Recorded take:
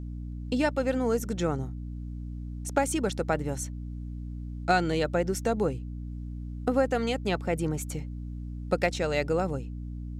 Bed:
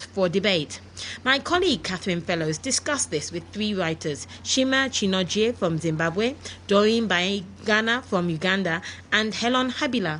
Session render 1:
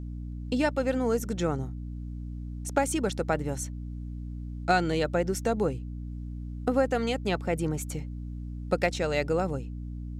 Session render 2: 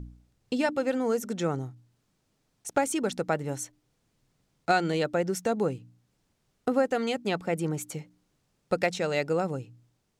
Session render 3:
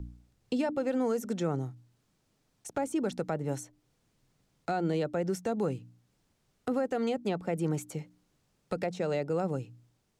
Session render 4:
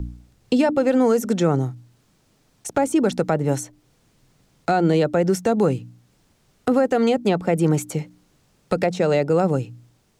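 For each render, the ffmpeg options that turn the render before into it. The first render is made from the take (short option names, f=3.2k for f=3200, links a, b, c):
-af anull
-af "bandreject=f=60:t=h:w=4,bandreject=f=120:t=h:w=4,bandreject=f=180:t=h:w=4,bandreject=f=240:t=h:w=4,bandreject=f=300:t=h:w=4"
-filter_complex "[0:a]acrossover=split=170|1000[a][b][c];[b]alimiter=limit=-23.5dB:level=0:latency=1[d];[c]acompressor=threshold=-42dB:ratio=12[e];[a][d][e]amix=inputs=3:normalize=0"
-af "volume=12dB"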